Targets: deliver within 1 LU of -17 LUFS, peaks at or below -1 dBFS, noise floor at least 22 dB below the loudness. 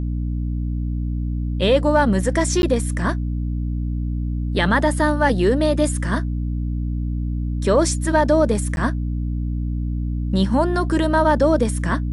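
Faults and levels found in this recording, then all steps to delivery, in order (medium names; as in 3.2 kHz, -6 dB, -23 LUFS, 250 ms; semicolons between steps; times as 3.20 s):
dropouts 2; longest dropout 11 ms; hum 60 Hz; highest harmonic 300 Hz; hum level -21 dBFS; loudness -20.5 LUFS; peak level -5.0 dBFS; loudness target -17.0 LUFS
-> interpolate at 2.62/8.76 s, 11 ms; hum notches 60/120/180/240/300 Hz; trim +3.5 dB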